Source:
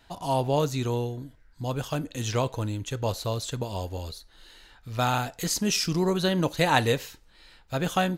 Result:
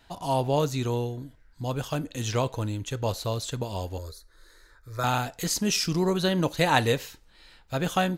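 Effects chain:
0:03.98–0:05.04: phaser with its sweep stopped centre 780 Hz, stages 6

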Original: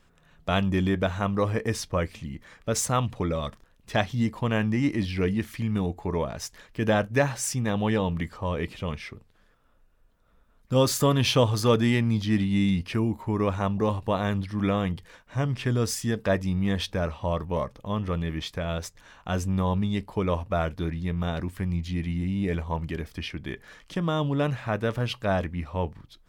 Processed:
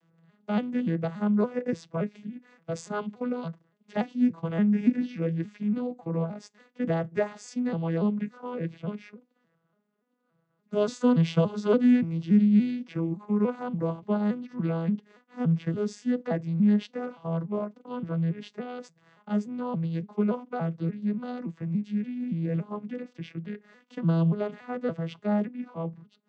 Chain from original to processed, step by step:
vocoder with an arpeggio as carrier major triad, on E3, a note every 286 ms
0:12.01–0:12.69: notch filter 1,700 Hz, Q 9.2

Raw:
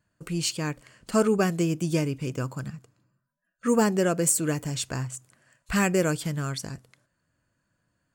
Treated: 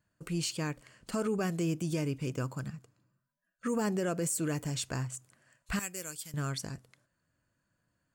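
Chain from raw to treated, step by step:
0:05.79–0:06.34: first-order pre-emphasis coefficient 0.9
brickwall limiter −19 dBFS, peak gain reduction 9.5 dB
level −4 dB

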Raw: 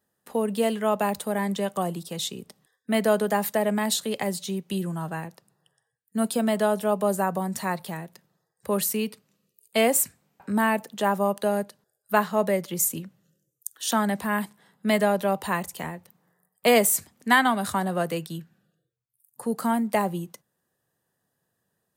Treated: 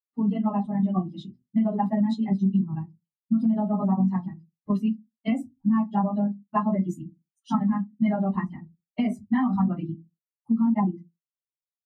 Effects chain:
spectral dynamics exaggerated over time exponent 2
on a send at −3 dB: convolution reverb RT60 0.25 s, pre-delay 3 ms
on the sum: time stretch by phase vocoder 0.54×
low-pass filter 1,900 Hz 12 dB per octave
parametric band 250 Hz +11.5 dB 0.93 octaves
brickwall limiter −17 dBFS, peak gain reduction 10.5 dB
downward compressor 4 to 1, threshold −27 dBFS, peak gain reduction 6.5 dB
comb filter 1 ms, depth 87%
level +4 dB

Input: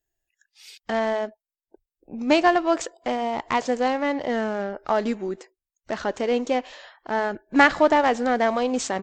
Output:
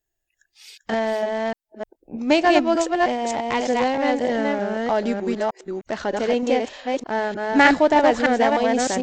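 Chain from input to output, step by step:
delay that plays each chunk backwards 306 ms, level −2 dB
dynamic equaliser 1,200 Hz, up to −7 dB, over −39 dBFS, Q 3.2
level +1.5 dB

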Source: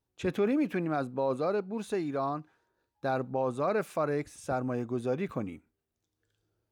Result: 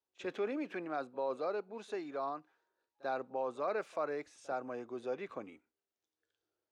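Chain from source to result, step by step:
three-way crossover with the lows and the highs turned down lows −20 dB, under 310 Hz, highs −23 dB, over 7,500 Hz
echo ahead of the sound 42 ms −23 dB
level −5.5 dB

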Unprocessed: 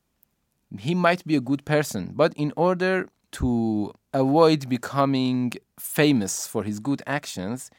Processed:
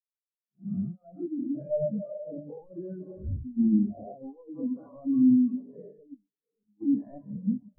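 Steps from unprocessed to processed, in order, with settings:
peak hold with a rise ahead of every peak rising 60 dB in 0.95 s
0:03.41–0:04.24: low-shelf EQ 90 Hz +8.5 dB
convolution reverb RT60 3.3 s, pre-delay 8 ms, DRR 6 dB
leveller curve on the samples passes 5
compressor whose output falls as the input rises −9 dBFS, ratio −0.5
0:06.14–0:06.81: gain into a clipping stage and back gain 21.5 dB
low-pass filter 1,200 Hz 6 dB per octave
tuned comb filter 200 Hz, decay 0.59 s, harmonics all, mix 60%
brickwall limiter −13 dBFS, peak gain reduction 6 dB
mains-hum notches 60/120/180/240/300/360/420/480/540 Hz
every bin expanded away from the loudest bin 4 to 1
level −4 dB

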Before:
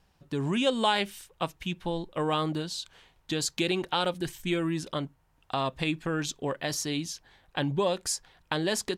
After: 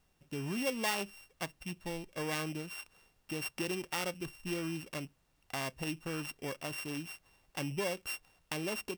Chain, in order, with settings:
samples sorted by size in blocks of 16 samples
background noise pink −68 dBFS
level −8.5 dB

